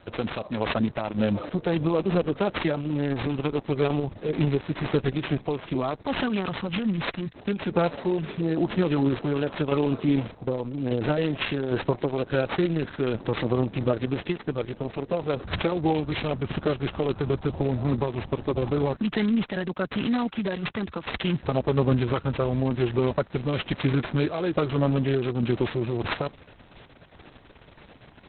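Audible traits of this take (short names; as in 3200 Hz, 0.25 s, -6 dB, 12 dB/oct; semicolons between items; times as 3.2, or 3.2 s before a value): aliases and images of a low sample rate 5800 Hz, jitter 20%; random-step tremolo; Opus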